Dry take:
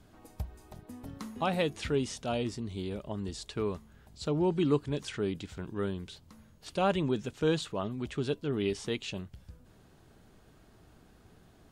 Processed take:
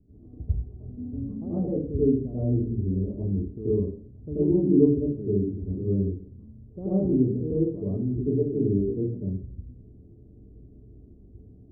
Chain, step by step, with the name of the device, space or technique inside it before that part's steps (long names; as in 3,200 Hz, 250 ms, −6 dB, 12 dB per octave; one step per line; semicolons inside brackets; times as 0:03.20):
next room (low-pass filter 390 Hz 24 dB per octave; convolution reverb RT60 0.50 s, pre-delay 80 ms, DRR −11.5 dB)
level −2.5 dB